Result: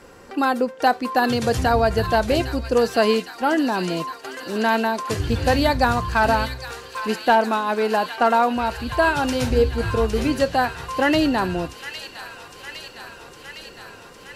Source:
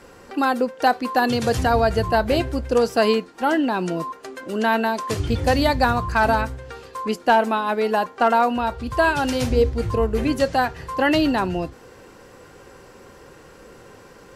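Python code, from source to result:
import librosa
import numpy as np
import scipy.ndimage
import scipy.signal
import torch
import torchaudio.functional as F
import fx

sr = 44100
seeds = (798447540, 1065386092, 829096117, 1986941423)

y = fx.echo_wet_highpass(x, sr, ms=809, feedback_pct=74, hz=2100.0, wet_db=-6.5)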